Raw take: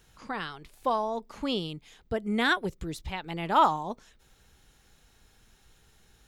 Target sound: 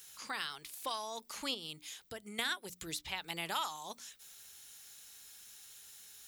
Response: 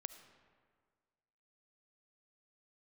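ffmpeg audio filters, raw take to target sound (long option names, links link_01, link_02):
-filter_complex "[0:a]asettb=1/sr,asplit=3[link_01][link_02][link_03];[link_01]atrim=end=1.544[link_04];[link_02]atrim=start=1.54:end=2.39,asetpts=PTS-STARTPTS,afade=type=in:duration=0.004:curve=qsin,afade=type=out:start_time=0.846:duration=0.004:curve=qsin,acompressor=threshold=-35dB:ratio=6[link_05];[link_03]atrim=start=2.386[link_06];[link_04][link_05]acrossfade=duration=0.004:curve1=hsin:curve2=qsin[link_07];[link_07][link_06]acrossfade=duration=0.004:curve1=qsin:curve2=hsin,aderivative,acrossover=split=1600|4300[link_08][link_09][link_10];[link_08]acompressor=threshold=-55dB:ratio=4[link_11];[link_09]acompressor=threshold=-54dB:ratio=4[link_12];[link_10]acompressor=threshold=-58dB:ratio=4[link_13];[link_11][link_12][link_13]amix=inputs=3:normalize=0,lowshelf=frequency=240:gain=11,bandreject=frequency=60:width_type=h:width=6,bandreject=frequency=120:width_type=h:width=6,bandreject=frequency=180:width_type=h:width=6,bandreject=frequency=240:width_type=h:width=6,bandreject=frequency=300:width_type=h:width=6,volume=13dB"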